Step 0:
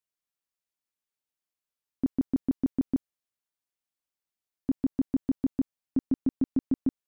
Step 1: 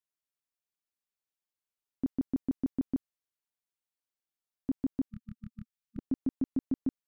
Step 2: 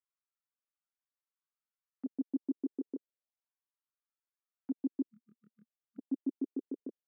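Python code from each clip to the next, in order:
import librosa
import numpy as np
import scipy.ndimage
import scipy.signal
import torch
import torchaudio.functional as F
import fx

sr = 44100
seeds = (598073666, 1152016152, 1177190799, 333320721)

y1 = fx.spec_erase(x, sr, start_s=5.09, length_s=0.89, low_hz=220.0, high_hz=1200.0)
y1 = F.gain(torch.from_numpy(y1), -4.5).numpy()
y2 = fx.auto_wah(y1, sr, base_hz=400.0, top_hz=1300.0, q=2.5, full_db=-38.0, direction='down')
y2 = fx.ladder_highpass(y2, sr, hz=210.0, resonance_pct=40)
y2 = fx.comb_cascade(y2, sr, direction='rising', hz=0.79)
y2 = F.gain(torch.from_numpy(y2), 12.0).numpy()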